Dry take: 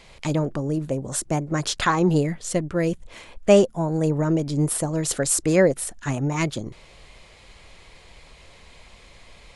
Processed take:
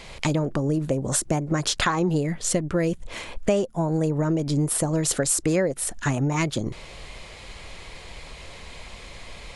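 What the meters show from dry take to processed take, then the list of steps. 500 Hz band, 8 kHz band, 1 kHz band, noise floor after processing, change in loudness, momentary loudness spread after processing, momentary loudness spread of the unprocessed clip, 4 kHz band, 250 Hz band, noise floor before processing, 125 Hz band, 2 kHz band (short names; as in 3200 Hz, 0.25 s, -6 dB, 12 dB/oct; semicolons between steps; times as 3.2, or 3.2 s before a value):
-4.0 dB, +1.0 dB, -1.5 dB, -43 dBFS, -1.5 dB, 19 LU, 10 LU, +1.5 dB, -1.5 dB, -50 dBFS, -0.5 dB, -0.5 dB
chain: compressor 5:1, threshold -28 dBFS, peak gain reduction 16.5 dB; gain +7.5 dB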